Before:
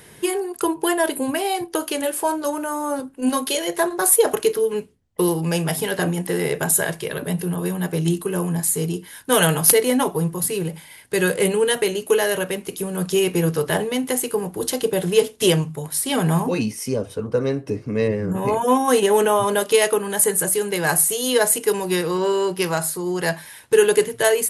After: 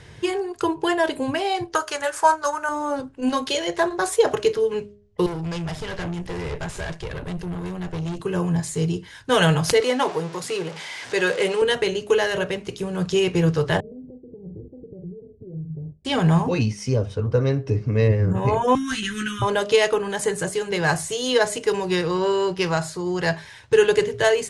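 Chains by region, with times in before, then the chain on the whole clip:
1.74–2.69 s: FFT filter 110 Hz 0 dB, 210 Hz -11 dB, 1.4 kHz +13 dB, 3.1 kHz 0 dB, 6.3 kHz +10 dB + upward expansion, over -28 dBFS
5.26–8.20 s: high-pass 100 Hz + valve stage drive 26 dB, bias 0.75
9.80–11.62 s: jump at every zero crossing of -28.5 dBFS + high-pass 340 Hz
13.80–16.05 s: doubling 44 ms -10.5 dB + compression 10:1, threshold -29 dBFS + Gaussian low-pass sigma 21 samples
18.75–19.42 s: elliptic band-stop 300–1400 Hz + overload inside the chain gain 17.5 dB + doubling 14 ms -5 dB
whole clip: low-pass 6.7 kHz 24 dB/octave; resonant low shelf 150 Hz +9 dB, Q 1.5; de-hum 205.7 Hz, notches 3

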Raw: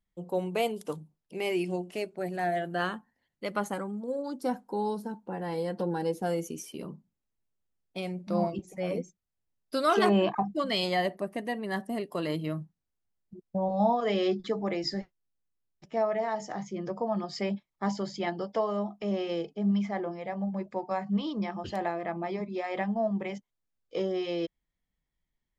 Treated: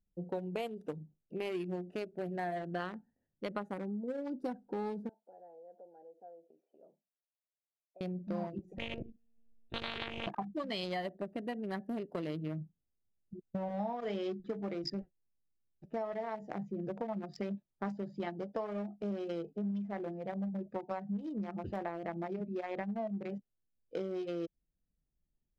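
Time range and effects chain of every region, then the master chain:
5.09–8.01 s: compression 4:1, threshold -37 dBFS + ladder band-pass 720 Hz, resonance 65%
8.78–10.27 s: high-order bell 1.1 kHz -11.5 dB 1.3 oct + monotone LPC vocoder at 8 kHz 230 Hz + spectrum-flattening compressor 10:1
whole clip: local Wiener filter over 41 samples; treble shelf 7.5 kHz -6 dB; compression 5:1, threshold -36 dBFS; trim +1 dB

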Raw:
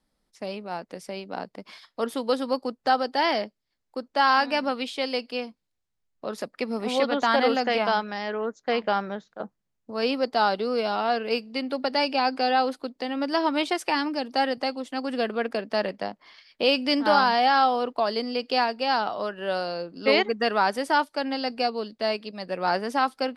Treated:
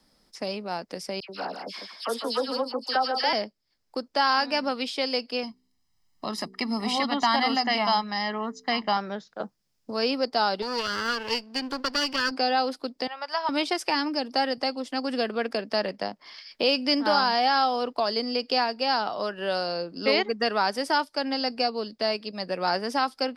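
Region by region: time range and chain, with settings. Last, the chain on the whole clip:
1.20–3.33 s: high-pass 390 Hz 6 dB/octave + phase dispersion lows, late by 91 ms, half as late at 1.9 kHz + delay 150 ms -8 dB
5.43–8.97 s: comb 1 ms, depth 77% + de-hum 63.48 Hz, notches 7
10.62–12.31 s: comb filter that takes the minimum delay 0.65 ms + bass shelf 350 Hz -7 dB
13.07–13.49 s: high-pass 820 Hz 24 dB/octave + tilt EQ -3.5 dB/octave
whole clip: peaking EQ 5.1 kHz +10 dB 0.29 oct; three bands compressed up and down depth 40%; trim -1.5 dB

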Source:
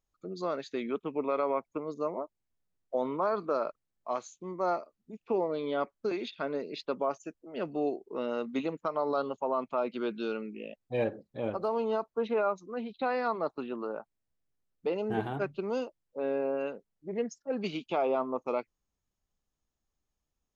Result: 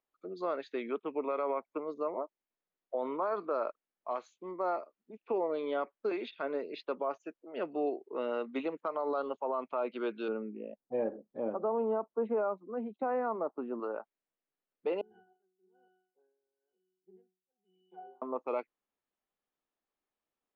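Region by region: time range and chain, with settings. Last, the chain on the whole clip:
10.28–13.80 s: low-pass 1.1 kHz + peaking EQ 210 Hz +7 dB 0.68 oct
15.01–18.22 s: pitch-class resonator F#, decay 0.64 s + logarithmic tremolo 1 Hz, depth 28 dB
whole clip: three-band isolator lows -23 dB, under 250 Hz, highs -23 dB, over 3.6 kHz; peak limiter -24 dBFS

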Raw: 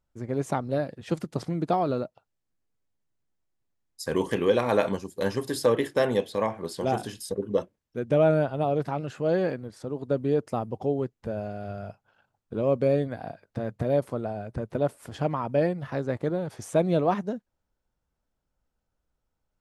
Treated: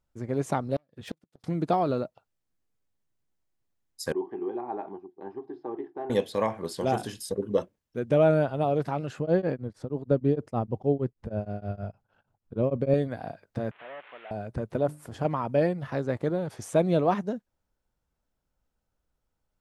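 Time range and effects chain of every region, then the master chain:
0.76–1.44 s: self-modulated delay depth 0.36 ms + peaking EQ 3.5 kHz +4.5 dB 0.24 oct + inverted gate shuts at -22 dBFS, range -41 dB
4.12–6.10 s: two resonant band-passes 530 Hz, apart 1.1 oct + distance through air 250 m
9.19–12.94 s: tilt EQ -2 dB/octave + tremolo of two beating tones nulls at 6.4 Hz
13.71–14.31 s: one-bit delta coder 16 kbps, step -40 dBFS + high-pass 1.2 kHz
14.81–15.25 s: peaking EQ 3.2 kHz -5.5 dB 2.1 oct + hum notches 50/100/150/200/250/300 Hz
whole clip: none

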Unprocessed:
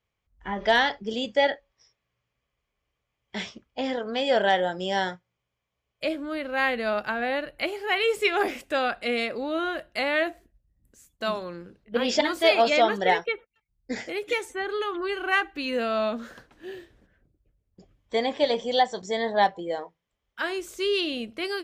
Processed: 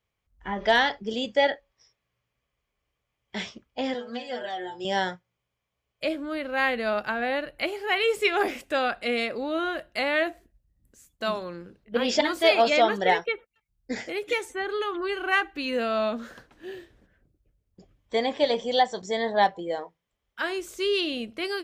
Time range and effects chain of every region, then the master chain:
3.94–4.85 s: inharmonic resonator 120 Hz, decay 0.26 s, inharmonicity 0.002 + three bands compressed up and down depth 100%
whole clip: none

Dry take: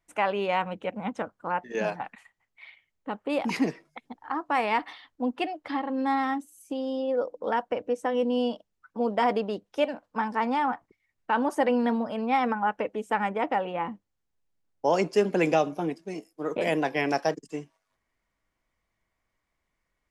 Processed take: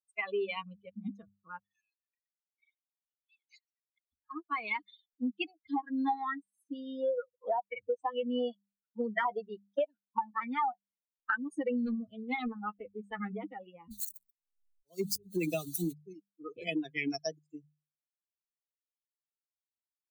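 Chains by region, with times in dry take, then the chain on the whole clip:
1.60–4.13 s: compression 3:1, threshold -38 dBFS + brick-wall FIR high-pass 1.6 kHz
5.72–11.36 s: band-stop 1.1 kHz, Q 26 + sweeping bell 2.2 Hz 670–2100 Hz +14 dB
11.86–13.36 s: doubling 20 ms -11 dB + loudspeaker Doppler distortion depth 0.25 ms
13.91–15.93 s: zero-crossing glitches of -20.5 dBFS + bass shelf 110 Hz +12 dB + slow attack 348 ms
whole clip: expander on every frequency bin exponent 3; hum notches 50/100/150/200 Hz; compression 12:1, threshold -36 dBFS; trim +7 dB

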